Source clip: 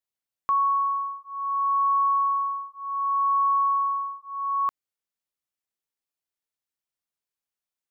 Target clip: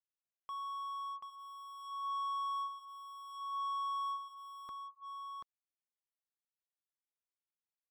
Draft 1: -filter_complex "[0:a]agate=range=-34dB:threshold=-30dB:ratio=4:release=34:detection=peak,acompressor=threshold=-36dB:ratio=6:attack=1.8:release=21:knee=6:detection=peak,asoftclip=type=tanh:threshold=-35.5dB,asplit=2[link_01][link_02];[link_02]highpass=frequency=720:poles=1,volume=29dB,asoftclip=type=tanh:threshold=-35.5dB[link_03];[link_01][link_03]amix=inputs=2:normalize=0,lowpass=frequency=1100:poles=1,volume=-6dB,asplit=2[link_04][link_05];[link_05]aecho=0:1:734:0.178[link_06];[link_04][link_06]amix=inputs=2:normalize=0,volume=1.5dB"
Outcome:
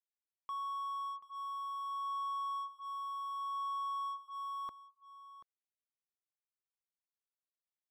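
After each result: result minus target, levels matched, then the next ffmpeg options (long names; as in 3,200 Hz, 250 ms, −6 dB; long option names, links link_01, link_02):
echo-to-direct −11 dB; soft clipping: distortion −9 dB
-filter_complex "[0:a]agate=range=-34dB:threshold=-30dB:ratio=4:release=34:detection=peak,acompressor=threshold=-36dB:ratio=6:attack=1.8:release=21:knee=6:detection=peak,asoftclip=type=tanh:threshold=-35.5dB,asplit=2[link_01][link_02];[link_02]highpass=frequency=720:poles=1,volume=29dB,asoftclip=type=tanh:threshold=-35.5dB[link_03];[link_01][link_03]amix=inputs=2:normalize=0,lowpass=frequency=1100:poles=1,volume=-6dB,asplit=2[link_04][link_05];[link_05]aecho=0:1:734:0.631[link_06];[link_04][link_06]amix=inputs=2:normalize=0,volume=1.5dB"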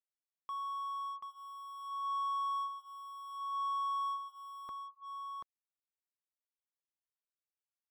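soft clipping: distortion −9 dB
-filter_complex "[0:a]agate=range=-34dB:threshold=-30dB:ratio=4:release=34:detection=peak,acompressor=threshold=-36dB:ratio=6:attack=1.8:release=21:knee=6:detection=peak,asoftclip=type=tanh:threshold=-44.5dB,asplit=2[link_01][link_02];[link_02]highpass=frequency=720:poles=1,volume=29dB,asoftclip=type=tanh:threshold=-35.5dB[link_03];[link_01][link_03]amix=inputs=2:normalize=0,lowpass=frequency=1100:poles=1,volume=-6dB,asplit=2[link_04][link_05];[link_05]aecho=0:1:734:0.631[link_06];[link_04][link_06]amix=inputs=2:normalize=0,volume=1.5dB"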